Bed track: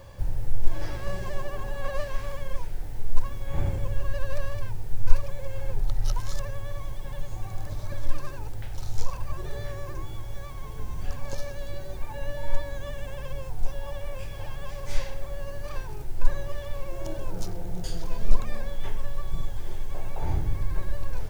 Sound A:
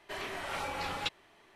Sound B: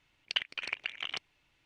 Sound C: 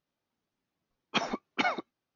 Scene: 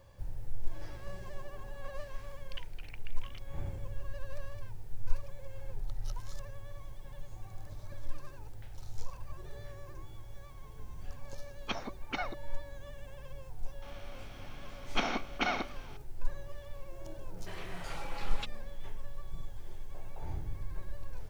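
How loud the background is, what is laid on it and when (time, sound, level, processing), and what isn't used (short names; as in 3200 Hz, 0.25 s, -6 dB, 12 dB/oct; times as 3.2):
bed track -12 dB
2.21 add B -17 dB
10.54 add C -8 dB
13.82 add C -6 dB + per-bin compression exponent 0.4
17.37 add A -7.5 dB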